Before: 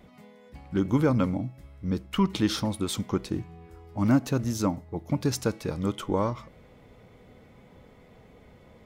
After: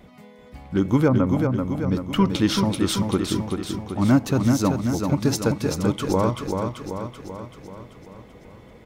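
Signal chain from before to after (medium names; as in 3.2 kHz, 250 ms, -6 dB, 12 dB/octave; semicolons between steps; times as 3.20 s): 1.08–1.51 s: low-pass 1.4 kHz 12 dB/octave; feedback delay 385 ms, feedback 57%, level -5 dB; trim +4.5 dB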